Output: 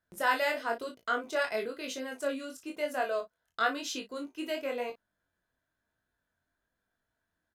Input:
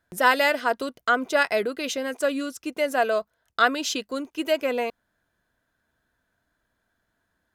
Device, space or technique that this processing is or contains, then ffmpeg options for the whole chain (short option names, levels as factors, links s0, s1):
double-tracked vocal: -filter_complex "[0:a]asplit=2[s0][s1];[s1]adelay=35,volume=0.355[s2];[s0][s2]amix=inputs=2:normalize=0,flanger=delay=19.5:depth=3.6:speed=1,volume=0.473"